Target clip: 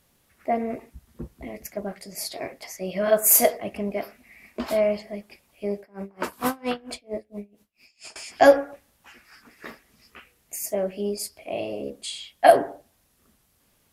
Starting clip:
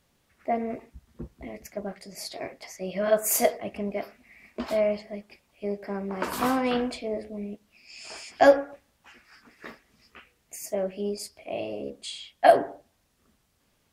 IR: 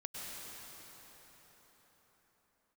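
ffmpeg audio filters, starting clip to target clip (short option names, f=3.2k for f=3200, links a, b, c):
-filter_complex "[0:a]equalizer=f=12k:w=1.1:g=9,asettb=1/sr,asplit=3[a][b][c];[a]atrim=end=5.794[d];[b]atrim=start=5.79:end=8.16,asetpts=PTS-STARTPTS,afade=t=in:d=0.004:c=qsin,afade=t=out:st=2.366:d=0.004:c=qsin,aeval=exprs='val(0)*pow(10,-28*(0.5-0.5*cos(2*PI*4.4*n/s))/20)':c=same[e];[c]atrim=start=8.156[f];[d][e]acrossfade=d=0.004:c1=hsin:c2=qsin[g];[g][f]acrossfade=d=0.004:c1=qsin:c2=hsin,volume=2.5dB"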